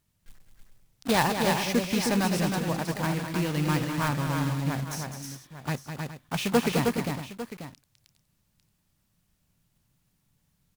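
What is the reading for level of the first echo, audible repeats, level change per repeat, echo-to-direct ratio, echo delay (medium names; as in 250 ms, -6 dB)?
-8.0 dB, 4, no regular repeats, -2.0 dB, 205 ms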